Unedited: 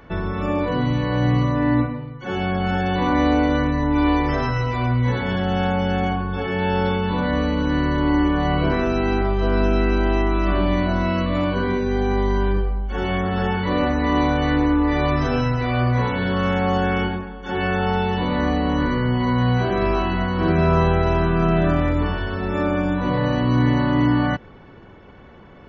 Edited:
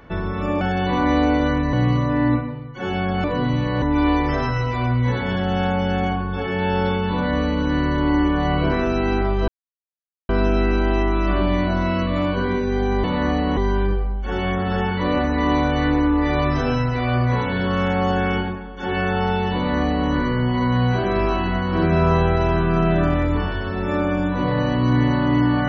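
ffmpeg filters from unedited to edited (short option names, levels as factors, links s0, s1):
-filter_complex "[0:a]asplit=8[s0][s1][s2][s3][s4][s5][s6][s7];[s0]atrim=end=0.612[s8];[s1]atrim=start=2.698:end=3.822[s9];[s2]atrim=start=1.188:end=2.702[s10];[s3]atrim=start=0.608:end=1.192[s11];[s4]atrim=start=3.818:end=9.48,asetpts=PTS-STARTPTS,afade=t=out:st=5.658:d=0.004:c=hsin,apad=pad_dur=0.81[s12];[s5]atrim=start=9.48:end=12.232,asetpts=PTS-STARTPTS,afade=t=in:d=0.004:c=hsin[s13];[s6]atrim=start=18.218:end=18.752[s14];[s7]atrim=start=12.228[s15];[s8][s9]acrossfade=d=0.004:c1=hsin:c2=hsin[s16];[s16][s10]acrossfade=d=0.004:c1=hsin:c2=hsin[s17];[s17][s11]acrossfade=d=0.004:c1=hsin:c2=hsin[s18];[s12][s13]concat=n=2:v=0:a=1[s19];[s18][s19]acrossfade=d=0.004:c1=hsin:c2=hsin[s20];[s20][s14]acrossfade=d=0.004:c1=hsin:c2=hsin[s21];[s21][s15]acrossfade=d=0.004:c1=hsin:c2=hsin"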